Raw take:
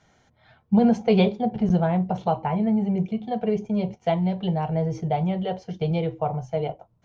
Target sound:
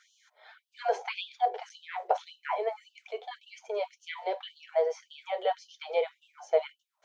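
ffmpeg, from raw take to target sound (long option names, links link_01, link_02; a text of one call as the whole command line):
ffmpeg -i in.wav -filter_complex "[0:a]asplit=2[link_01][link_02];[link_02]asoftclip=type=tanh:threshold=-17.5dB,volume=-11.5dB[link_03];[link_01][link_03]amix=inputs=2:normalize=0,bandreject=frequency=2800:width=15,acrossover=split=2800[link_04][link_05];[link_05]acompressor=threshold=-49dB:ratio=4:attack=1:release=60[link_06];[link_04][link_06]amix=inputs=2:normalize=0,afftfilt=real='re*gte(b*sr/1024,370*pow(2700/370,0.5+0.5*sin(2*PI*1.8*pts/sr)))':imag='im*gte(b*sr/1024,370*pow(2700/370,0.5+0.5*sin(2*PI*1.8*pts/sr)))':win_size=1024:overlap=0.75,volume=1.5dB" out.wav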